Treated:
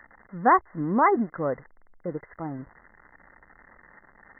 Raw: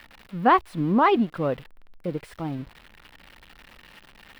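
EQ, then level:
linear-phase brick-wall low-pass 2,100 Hz
low-shelf EQ 260 Hz −7 dB
0.0 dB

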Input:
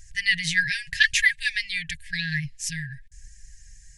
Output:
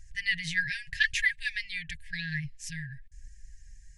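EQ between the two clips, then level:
parametric band 420 Hz −12 dB 2.2 octaves
high-shelf EQ 2,800 Hz −11.5 dB
−1.0 dB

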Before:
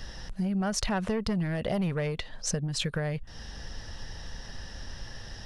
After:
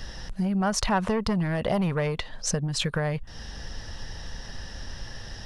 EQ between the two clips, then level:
dynamic equaliser 1,000 Hz, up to +7 dB, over −50 dBFS, Q 1.8
+3.0 dB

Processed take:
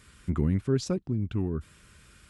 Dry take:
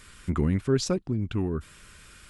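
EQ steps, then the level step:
high-pass filter 51 Hz
low-shelf EQ 370 Hz +7 dB
−6.5 dB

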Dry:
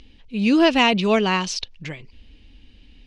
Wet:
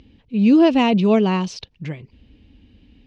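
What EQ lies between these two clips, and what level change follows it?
high-pass filter 110 Hz 12 dB per octave
spectral tilt −3 dB per octave
dynamic equaliser 1,600 Hz, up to −5 dB, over −34 dBFS, Q 1.6
−1.0 dB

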